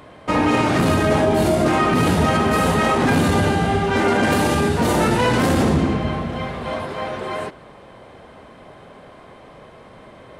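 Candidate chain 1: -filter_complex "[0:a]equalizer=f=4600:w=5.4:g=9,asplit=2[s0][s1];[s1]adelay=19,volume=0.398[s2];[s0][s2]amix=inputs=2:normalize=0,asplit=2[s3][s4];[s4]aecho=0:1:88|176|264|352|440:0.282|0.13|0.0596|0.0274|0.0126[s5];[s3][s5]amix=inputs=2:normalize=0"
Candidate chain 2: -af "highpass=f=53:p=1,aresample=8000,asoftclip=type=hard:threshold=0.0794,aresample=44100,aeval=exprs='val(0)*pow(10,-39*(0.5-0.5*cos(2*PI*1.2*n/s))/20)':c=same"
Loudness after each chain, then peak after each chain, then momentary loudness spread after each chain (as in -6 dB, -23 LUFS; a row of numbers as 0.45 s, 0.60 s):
-17.0 LUFS, -30.5 LUFS; -4.0 dBFS, -18.5 dBFS; 10 LU, 21 LU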